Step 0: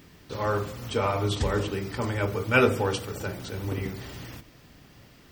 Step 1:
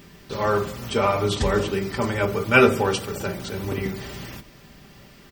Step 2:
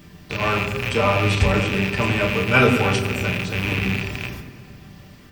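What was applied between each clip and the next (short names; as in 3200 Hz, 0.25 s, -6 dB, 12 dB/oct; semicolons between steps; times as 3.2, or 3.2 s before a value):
comb 5.1 ms, depth 41%; gain +4.5 dB
rattling part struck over -33 dBFS, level -12 dBFS; on a send at -2 dB: reverb RT60 2.1 s, pre-delay 3 ms; on the sum: gain -1.5 dB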